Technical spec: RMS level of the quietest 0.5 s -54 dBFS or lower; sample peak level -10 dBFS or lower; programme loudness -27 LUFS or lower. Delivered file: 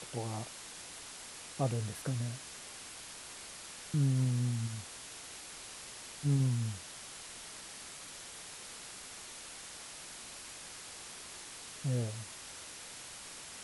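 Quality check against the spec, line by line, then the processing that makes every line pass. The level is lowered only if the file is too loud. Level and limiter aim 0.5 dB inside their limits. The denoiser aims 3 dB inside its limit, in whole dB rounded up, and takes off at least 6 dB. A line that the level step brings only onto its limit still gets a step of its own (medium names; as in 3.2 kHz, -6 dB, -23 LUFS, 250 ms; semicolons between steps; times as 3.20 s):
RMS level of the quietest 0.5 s -48 dBFS: fail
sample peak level -20.5 dBFS: pass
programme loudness -39.0 LUFS: pass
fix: noise reduction 9 dB, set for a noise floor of -48 dBFS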